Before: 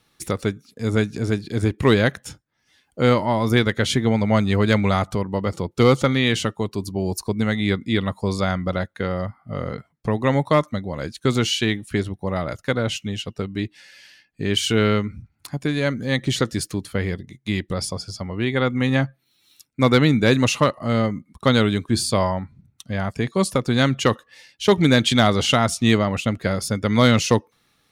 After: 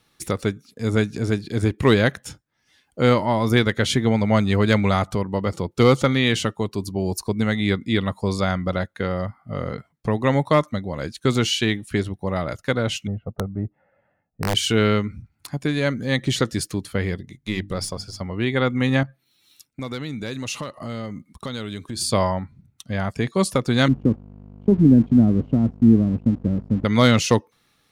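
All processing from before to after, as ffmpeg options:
-filter_complex "[0:a]asettb=1/sr,asplit=3[s0][s1][s2];[s0]atrim=end=13.074[s3];[s1]atrim=start=13.07:end=14.55,asetpts=PTS-STARTPTS,afade=t=in:d=0.004:c=qsin,afade=t=out:st=1.476:d=0.004:c=qsin,lowpass=f=1000:w=0.5412,lowpass=f=1000:w=1.3066,aecho=1:1:1.5:0.55,atrim=end_sample=65268,aeval=exprs='(mod(5.96*val(0)+1,2)-1)/5.96':c=same[s4];[s2]atrim=start=14.546[s5];[s3][s4]acrossfade=d=0.004:c1=hsin:c2=qsin[s6];[s6][s5]acrossfade=d=0.004:c1=qsin:c2=hsin,asettb=1/sr,asplit=3[s7][s8][s9];[s7]atrim=end=17.354[s10];[s8]atrim=start=17.35:end=18.21,asetpts=PTS-STARTPTS,afade=t=in:d=0.004:c=qsin,afade=t=out:st=0.856:d=0.004:c=qsin,aeval=exprs='if(lt(val(0),0),0.708*val(0),val(0))':c=same,bandreject=f=50:t=h:w=6,bandreject=f=100:t=h:w=6,bandreject=f=150:t=h:w=6,bandreject=f=200:t=h:w=6,bandreject=f=250:t=h:w=6,bandreject=f=300:t=h:w=6[s11];[s9]atrim=start=18.206[s12];[s10][s11]acrossfade=d=0.004:c1=hsin:c2=qsin[s13];[s13][s12]acrossfade=d=0.004:c1=qsin:c2=hsin,asettb=1/sr,asplit=3[s14][s15][s16];[s14]atrim=end=19.034[s17];[s15]atrim=start=19.03:end=22.01,asetpts=PTS-STARTPTS,afade=t=in:d=0.004:c=qsin,afade=t=out:st=2.976:d=0.004:c=qsin,acompressor=threshold=0.0355:ratio=4:attack=3.2:release=140:knee=1:detection=peak,adynamicequalizer=threshold=0.00282:dfrequency=2900:dqfactor=0.7:tfrequency=2900:tqfactor=0.7:attack=5:release=100:ratio=0.375:range=2.5:mode=boostabove:tftype=highshelf[s18];[s16]atrim=start=22.006[s19];[s17][s18]acrossfade=d=0.004:c1=hsin:c2=qsin[s20];[s20][s19]acrossfade=d=0.004:c1=qsin:c2=hsin,asettb=1/sr,asplit=3[s21][s22][s23];[s21]atrim=end=23.884[s24];[s22]atrim=start=23.88:end=26.85,asetpts=PTS-STARTPTS,afade=t=in:d=0.004:c=qsin,afade=t=out:st=2.966:d=0.004:c=qsin,aeval=exprs='val(0)+0.0126*(sin(2*PI*50*n/s)+sin(2*PI*2*50*n/s)/2+sin(2*PI*3*50*n/s)/3+sin(2*PI*4*50*n/s)/4+sin(2*PI*5*50*n/s)/5)':c=same,lowpass=f=260:t=q:w=2,aeval=exprs='sgn(val(0))*max(abs(val(0))-0.0075,0)':c=same[s25];[s23]atrim=start=26.846[s26];[s24][s25]acrossfade=d=0.004:c1=hsin:c2=qsin[s27];[s27][s26]acrossfade=d=0.004:c1=qsin:c2=hsin"

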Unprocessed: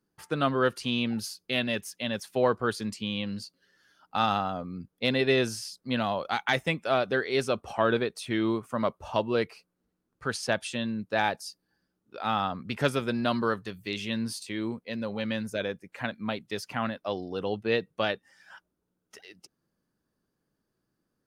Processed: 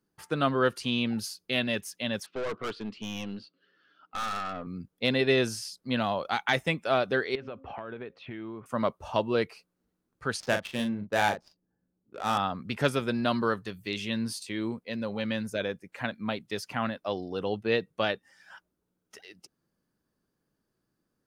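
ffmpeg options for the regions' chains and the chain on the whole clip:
-filter_complex "[0:a]asettb=1/sr,asplit=3[s0][s1][s2];[s0]atrim=end=2.264[s3];[s1]atrim=start=2.26:end=4.67,asetpts=PTS-STARTPTS,afade=t=in:d=0.004:c=qsin,afade=t=out:st=2.406:d=0.004:c=qsin,highpass=160,equalizer=f=300:t=q:w=4:g=4,equalizer=f=430:t=q:w=4:g=3,equalizer=f=880:t=q:w=4:g=-6,equalizer=f=1300:t=q:w=4:g=7,equalizer=f=1900:t=q:w=4:g=-4,equalizer=f=2800:t=q:w=4:g=4,lowpass=f=3800:w=0.5412,lowpass=f=3800:w=1.3066,aeval=exprs='(tanh(31.6*val(0)+0.4)-tanh(0.4))/31.6':c=same[s4];[s2]atrim=start=4.666[s5];[s3][s4]acrossfade=d=0.004:c1=hsin:c2=qsin[s6];[s6][s5]acrossfade=d=0.004:c1=qsin:c2=hsin,asettb=1/sr,asplit=3[s7][s8][s9];[s7]atrim=end=7.354[s10];[s8]atrim=start=7.35:end=8.66,asetpts=PTS-STARTPTS,afade=t=in:d=0.004:c=qsin,afade=t=out:st=1.306:d=0.004:c=qsin,lowpass=f=2800:w=0.5412,lowpass=f=2800:w=1.3066,bandreject=f=268.1:t=h:w=4,bandreject=f=536.2:t=h:w=4,acompressor=threshold=0.0178:ratio=10:attack=3.2:release=140:knee=1:detection=peak[s11];[s9]atrim=start=8.656[s12];[s10][s11]acrossfade=d=0.004:c1=hsin:c2=qsin[s13];[s13][s12]acrossfade=d=0.004:c1=qsin:c2=hsin,asettb=1/sr,asplit=3[s14][s15][s16];[s14]atrim=end=10.404[s17];[s15]atrim=start=10.4:end=12.38,asetpts=PTS-STARTPTS,afade=t=in:d=0.004:c=qsin,afade=t=out:st=1.976:d=0.004:c=qsin,adynamicsmooth=sensitivity=7:basefreq=740,asplit=2[s18][s19];[s19]adelay=39,volume=0.447[s20];[s18][s20]amix=inputs=2:normalize=0,atrim=end_sample=87318[s21];[s16]atrim=start=12.376[s22];[s17][s21]acrossfade=d=0.004:c1=hsin:c2=qsin[s23];[s23][s22]acrossfade=d=0.004:c1=qsin:c2=hsin"

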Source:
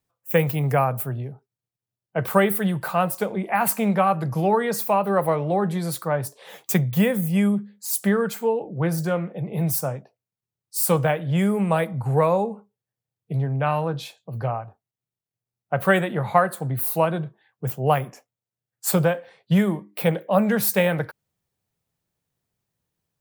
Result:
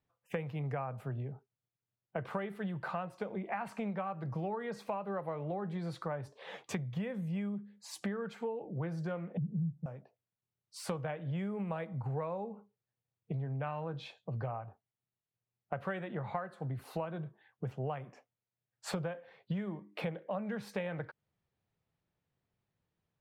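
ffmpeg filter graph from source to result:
-filter_complex "[0:a]asettb=1/sr,asplit=3[s0][s1][s2];[s0]atrim=end=9.374[s3];[s1]atrim=start=9.37:end=9.86,asetpts=PTS-STARTPTS,afade=t=in:d=0.004:c=qsin,afade=t=out:st=0.486:d=0.004:c=qsin,lowpass=f=220:t=q:w=2.5,equalizer=f=160:t=o:w=0.59:g=11.5[s4];[s2]atrim=start=9.856[s5];[s3][s4]acrossfade=d=0.004:c1=hsin:c2=qsin[s6];[s6][s5]acrossfade=d=0.004:c1=qsin:c2=hsin,lowpass=3200,acompressor=threshold=0.0224:ratio=6,volume=0.75"

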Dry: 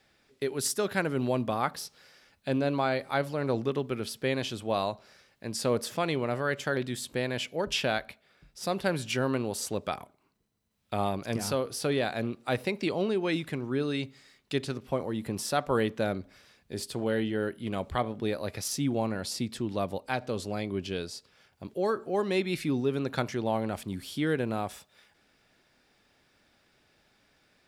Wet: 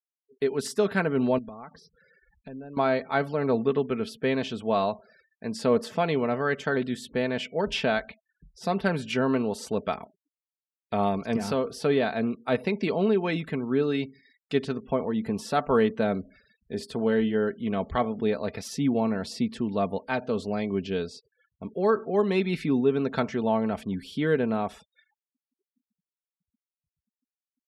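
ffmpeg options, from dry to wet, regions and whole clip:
-filter_complex "[0:a]asettb=1/sr,asplit=3[s0][s1][s2];[s0]atrim=end=1.384[s3];[s1]atrim=start=1.38:end=2.77,asetpts=PTS-STARTPTS,afade=t=in:d=0.004:c=qsin,afade=t=out:st=1.386:d=0.004:c=qsin,lowpass=f=3500:p=1,acompressor=threshold=0.00398:ratio=3:attack=3.2:release=140:knee=1:detection=peak,lowshelf=f=91:g=9.5[s4];[s2]atrim=start=2.766[s5];[s3][s4]acrossfade=d=0.004:c1=hsin:c2=qsin[s6];[s6][s5]acrossfade=d=0.004:c1=qsin:c2=hsin,afftfilt=real='re*gte(hypot(re,im),0.00282)':imag='im*gte(hypot(re,im),0.00282)':win_size=1024:overlap=0.75,aemphasis=mode=reproduction:type=75kf,aecho=1:1:4.5:0.52,volume=1.5"

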